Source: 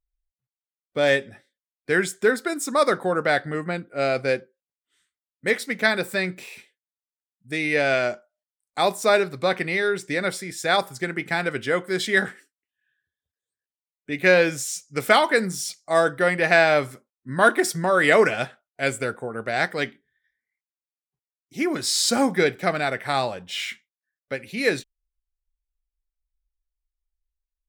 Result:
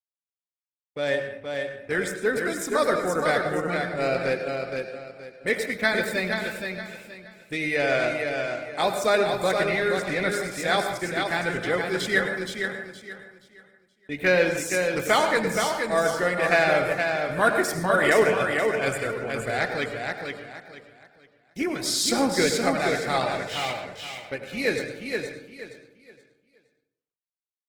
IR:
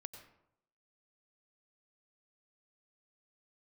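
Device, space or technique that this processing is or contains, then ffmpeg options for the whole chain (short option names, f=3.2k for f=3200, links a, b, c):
speakerphone in a meeting room: -filter_complex "[0:a]agate=range=-46dB:threshold=-44dB:ratio=16:detection=peak,aecho=1:1:472|944|1416|1888:0.562|0.157|0.0441|0.0123[a];[1:a]atrim=start_sample=2205[b];[a][b]afir=irnorm=-1:irlink=0,dynaudnorm=f=360:g=13:m=4dB,volume=-1.5dB" -ar 48000 -c:a libopus -b:a 16k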